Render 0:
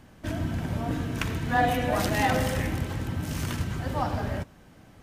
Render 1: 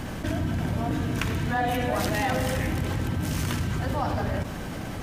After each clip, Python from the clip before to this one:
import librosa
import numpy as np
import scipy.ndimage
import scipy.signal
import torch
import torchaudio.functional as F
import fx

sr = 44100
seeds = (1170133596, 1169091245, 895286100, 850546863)

y = fx.env_flatten(x, sr, amount_pct=70)
y = y * 10.0 ** (-4.0 / 20.0)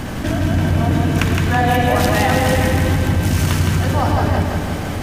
y = fx.echo_feedback(x, sr, ms=164, feedback_pct=58, wet_db=-4)
y = y * 10.0 ** (8.0 / 20.0)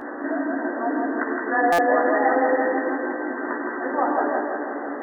y = fx.brickwall_bandpass(x, sr, low_hz=240.0, high_hz=2000.0)
y = fx.doubler(y, sr, ms=14.0, db=-4)
y = fx.buffer_glitch(y, sr, at_s=(1.72,), block=256, repeats=10)
y = y * 10.0 ** (-3.5 / 20.0)